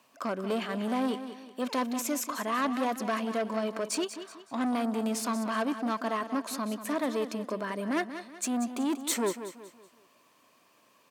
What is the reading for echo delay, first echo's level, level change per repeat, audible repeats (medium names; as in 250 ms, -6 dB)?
187 ms, -11.0 dB, -8.5 dB, 3